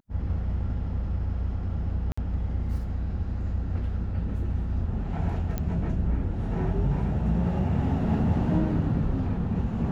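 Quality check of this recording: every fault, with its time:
0:02.12–0:02.17: drop-out 55 ms
0:05.58: click −16 dBFS

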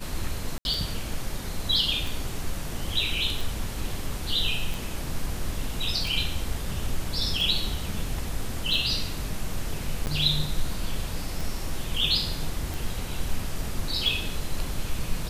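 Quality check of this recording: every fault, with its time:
scratch tick 45 rpm
0:00.58–0:00.65: drop-out 71 ms
0:10.06–0:10.07: drop-out 9.7 ms

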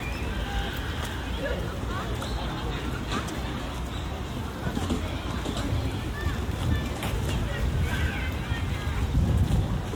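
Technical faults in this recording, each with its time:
surface crackle 18 per second −36 dBFS

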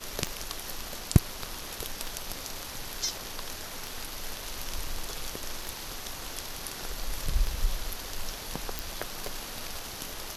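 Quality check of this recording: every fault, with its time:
scratch tick 33 1/3 rpm
0:08.79: click

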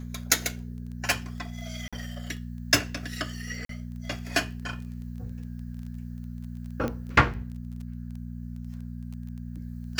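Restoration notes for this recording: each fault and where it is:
surface crackle 12 per second −37 dBFS
mains hum 60 Hz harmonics 4 −37 dBFS
0:01.88–0:01.93: drop-out 46 ms
0:03.65–0:03.69: drop-out 43 ms
0:06.88: click −18 dBFS

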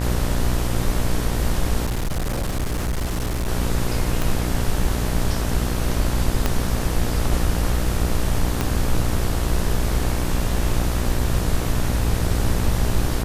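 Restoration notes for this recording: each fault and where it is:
mains buzz 60 Hz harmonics 32 −24 dBFS
0:01.85–0:03.49: clipping −20 dBFS
0:04.22: click
0:06.46: click −5 dBFS
0:08.61: click −7 dBFS

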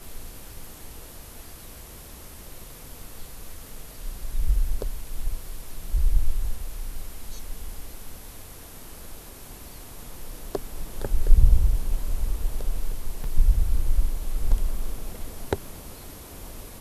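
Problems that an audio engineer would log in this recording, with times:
0:13.24: drop-out 3.1 ms

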